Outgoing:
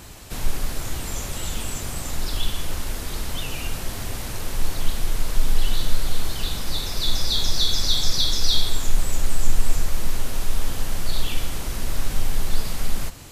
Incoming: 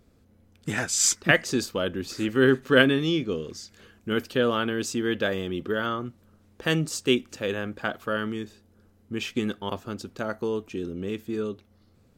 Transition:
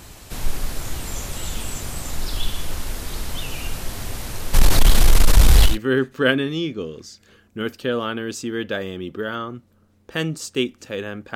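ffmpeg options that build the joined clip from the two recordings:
ffmpeg -i cue0.wav -i cue1.wav -filter_complex "[0:a]asplit=3[link_01][link_02][link_03];[link_01]afade=type=out:start_time=4.53:duration=0.02[link_04];[link_02]aeval=exprs='0.562*sin(PI/2*3.16*val(0)/0.562)':channel_layout=same,afade=type=in:start_time=4.53:duration=0.02,afade=type=out:start_time=5.78:duration=0.02[link_05];[link_03]afade=type=in:start_time=5.78:duration=0.02[link_06];[link_04][link_05][link_06]amix=inputs=3:normalize=0,apad=whole_dur=11.35,atrim=end=11.35,atrim=end=5.78,asetpts=PTS-STARTPTS[link_07];[1:a]atrim=start=2.15:end=7.86,asetpts=PTS-STARTPTS[link_08];[link_07][link_08]acrossfade=duration=0.14:curve1=tri:curve2=tri" out.wav

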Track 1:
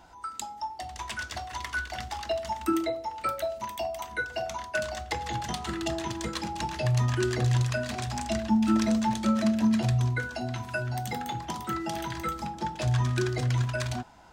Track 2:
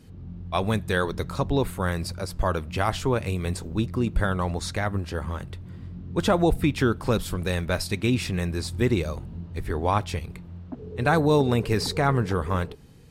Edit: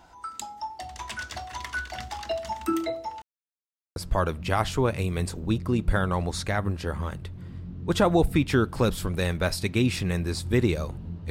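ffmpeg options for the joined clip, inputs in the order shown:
ffmpeg -i cue0.wav -i cue1.wav -filter_complex "[0:a]apad=whole_dur=11.3,atrim=end=11.3,asplit=2[link_01][link_02];[link_01]atrim=end=3.22,asetpts=PTS-STARTPTS,afade=type=out:start_time=3.216:duration=0.004:curve=hsin[link_03];[link_02]atrim=start=3.22:end=3.96,asetpts=PTS-STARTPTS,volume=0[link_04];[1:a]atrim=start=2.24:end=9.58,asetpts=PTS-STARTPTS,afade=type=in:duration=0.004:curve=hsin[link_05];[link_03][link_04][link_05]concat=n=3:v=0:a=1" out.wav

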